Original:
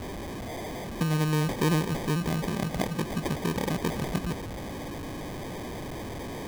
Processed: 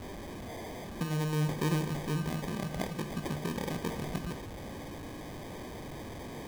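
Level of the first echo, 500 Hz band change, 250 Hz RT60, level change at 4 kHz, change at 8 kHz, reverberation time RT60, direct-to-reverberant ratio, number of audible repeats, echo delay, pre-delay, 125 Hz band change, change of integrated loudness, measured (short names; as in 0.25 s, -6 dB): none, -6.0 dB, 0.50 s, -6.0 dB, -6.0 dB, 0.50 s, 8.0 dB, none, none, 20 ms, -5.0 dB, -5.5 dB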